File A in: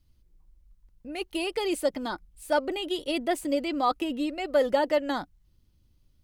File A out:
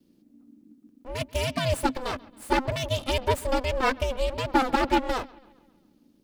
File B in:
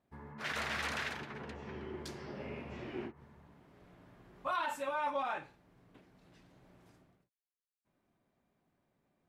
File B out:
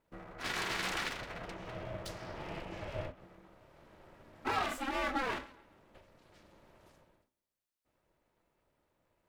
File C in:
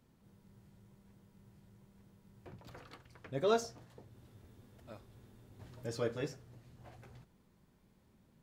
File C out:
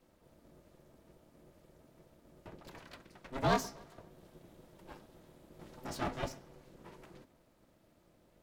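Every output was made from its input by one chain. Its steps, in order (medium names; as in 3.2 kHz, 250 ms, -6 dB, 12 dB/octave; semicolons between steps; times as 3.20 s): comb filter that takes the minimum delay 3 ms; bucket-brigade echo 136 ms, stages 4096, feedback 51%, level -23 dB; ring modulator 260 Hz; trim +6 dB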